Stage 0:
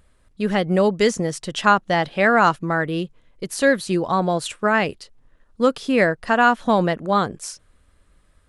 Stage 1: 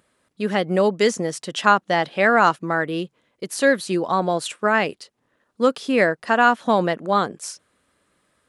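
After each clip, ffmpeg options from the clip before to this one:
ffmpeg -i in.wav -af "highpass=200" out.wav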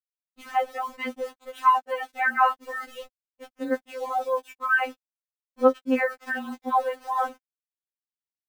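ffmpeg -i in.wav -af "highpass=frequency=190:width=0.5412,highpass=frequency=190:width=1.3066,equalizer=frequency=260:width_type=q:width=4:gain=-7,equalizer=frequency=470:width_type=q:width=4:gain=-8,equalizer=frequency=670:width_type=q:width=4:gain=10,equalizer=frequency=1900:width_type=q:width=4:gain=-4,lowpass=frequency=2400:width=0.5412,lowpass=frequency=2400:width=1.3066,aeval=exprs='val(0)*gte(abs(val(0)),0.0168)':channel_layout=same,afftfilt=real='re*3.46*eq(mod(b,12),0)':imag='im*3.46*eq(mod(b,12),0)':win_size=2048:overlap=0.75,volume=-1.5dB" out.wav

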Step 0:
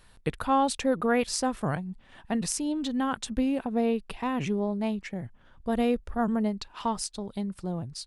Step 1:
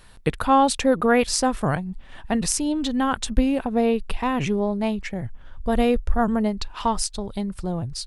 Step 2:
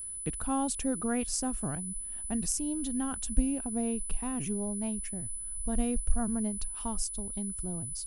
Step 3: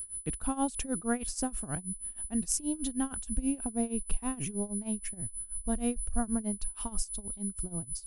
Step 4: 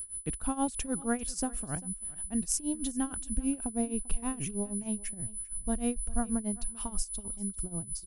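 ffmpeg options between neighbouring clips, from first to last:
ffmpeg -i in.wav -af "asubboost=boost=4:cutoff=86,volume=7dB" out.wav
ffmpeg -i in.wav -af "aeval=exprs='val(0)+0.0282*sin(2*PI*10000*n/s)':channel_layout=same,equalizer=frequency=125:width_type=o:width=1:gain=-8,equalizer=frequency=500:width_type=o:width=1:gain=-10,equalizer=frequency=1000:width_type=o:width=1:gain=-9,equalizer=frequency=2000:width_type=o:width=1:gain=-10,equalizer=frequency=4000:width_type=o:width=1:gain=-11,volume=-5dB" out.wav
ffmpeg -i in.wav -af "tremolo=f=6.3:d=0.88,volume=3dB" out.wav
ffmpeg -i in.wav -af "aecho=1:1:394:0.0891" out.wav

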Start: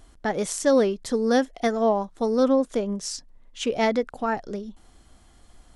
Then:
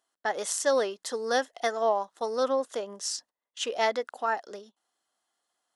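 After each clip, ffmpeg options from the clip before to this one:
ffmpeg -i in.wav -af "highpass=640,bandreject=frequency=2300:width=7.2,agate=range=-18dB:threshold=-49dB:ratio=16:detection=peak" out.wav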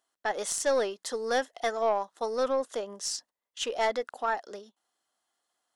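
ffmpeg -i in.wav -af "aeval=exprs='(tanh(6.31*val(0)+0.2)-tanh(0.2))/6.31':channel_layout=same" out.wav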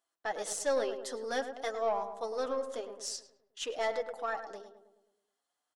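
ffmpeg -i in.wav -filter_complex "[0:a]flanger=delay=5.9:depth=1.8:regen=-29:speed=0.49:shape=sinusoidal,asplit=2[link_01][link_02];[link_02]adelay=106,lowpass=frequency=1400:poles=1,volume=-8dB,asplit=2[link_03][link_04];[link_04]adelay=106,lowpass=frequency=1400:poles=1,volume=0.55,asplit=2[link_05][link_06];[link_06]adelay=106,lowpass=frequency=1400:poles=1,volume=0.55,asplit=2[link_07][link_08];[link_08]adelay=106,lowpass=frequency=1400:poles=1,volume=0.55,asplit=2[link_09][link_10];[link_10]adelay=106,lowpass=frequency=1400:poles=1,volume=0.55,asplit=2[link_11][link_12];[link_12]adelay=106,lowpass=frequency=1400:poles=1,volume=0.55,asplit=2[link_13][link_14];[link_14]adelay=106,lowpass=frequency=1400:poles=1,volume=0.55[link_15];[link_01][link_03][link_05][link_07][link_09][link_11][link_13][link_15]amix=inputs=8:normalize=0,volume=-2dB" out.wav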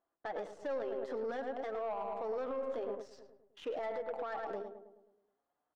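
ffmpeg -i in.wav -af "acompressor=threshold=-36dB:ratio=6,alimiter=level_in=13.5dB:limit=-24dB:level=0:latency=1:release=27,volume=-13.5dB,adynamicsmooth=sensitivity=7.5:basefreq=1100,volume=7.5dB" out.wav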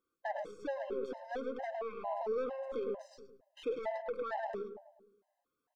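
ffmpeg -i in.wav -af "afftfilt=real='re*gt(sin(2*PI*2.2*pts/sr)*(1-2*mod(floor(b*sr/1024/530),2)),0)':imag='im*gt(sin(2*PI*2.2*pts/sr)*(1-2*mod(floor(b*sr/1024/530),2)),0)':win_size=1024:overlap=0.75,volume=3.5dB" out.wav

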